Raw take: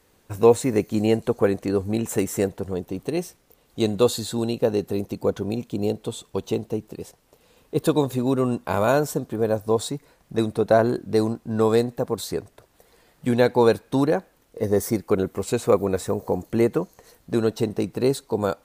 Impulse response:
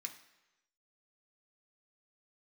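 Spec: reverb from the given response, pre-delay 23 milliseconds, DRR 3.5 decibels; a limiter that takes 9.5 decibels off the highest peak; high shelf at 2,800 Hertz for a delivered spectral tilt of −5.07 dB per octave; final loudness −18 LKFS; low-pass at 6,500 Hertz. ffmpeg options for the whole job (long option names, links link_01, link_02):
-filter_complex "[0:a]lowpass=6500,highshelf=frequency=2800:gain=8,alimiter=limit=-12dB:level=0:latency=1,asplit=2[link_01][link_02];[1:a]atrim=start_sample=2205,adelay=23[link_03];[link_02][link_03]afir=irnorm=-1:irlink=0,volume=-0.5dB[link_04];[link_01][link_04]amix=inputs=2:normalize=0,volume=6.5dB"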